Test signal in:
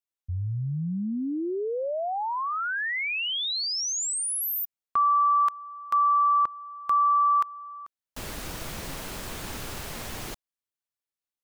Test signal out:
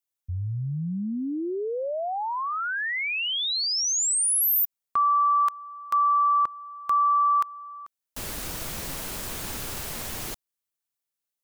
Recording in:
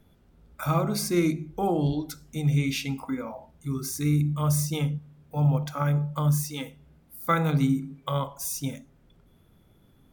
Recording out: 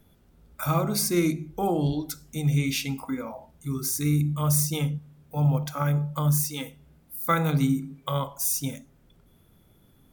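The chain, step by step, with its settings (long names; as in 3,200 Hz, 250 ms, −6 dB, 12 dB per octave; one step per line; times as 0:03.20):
high-shelf EQ 6,300 Hz +8 dB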